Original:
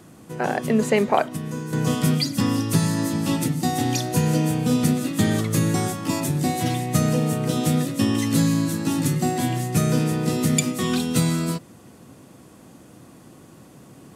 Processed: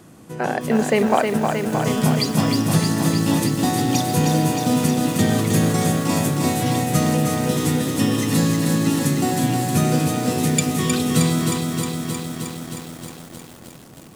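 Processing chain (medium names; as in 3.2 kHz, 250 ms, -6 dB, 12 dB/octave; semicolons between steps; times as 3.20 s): bit-crushed delay 312 ms, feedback 80%, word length 7-bit, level -4.5 dB; trim +1 dB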